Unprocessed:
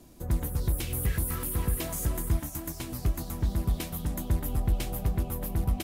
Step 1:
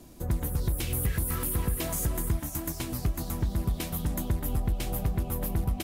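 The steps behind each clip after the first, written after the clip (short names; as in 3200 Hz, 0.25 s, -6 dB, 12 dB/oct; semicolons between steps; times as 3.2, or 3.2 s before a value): compressor 4:1, threshold -27 dBFS, peak gain reduction 6.5 dB; gain +3 dB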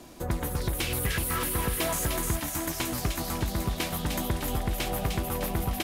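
thin delay 0.303 s, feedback 52%, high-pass 2200 Hz, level -4 dB; overdrive pedal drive 12 dB, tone 3700 Hz, clips at -15 dBFS; gain +2.5 dB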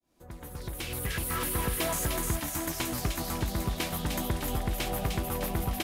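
opening faded in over 1.50 s; gain -1.5 dB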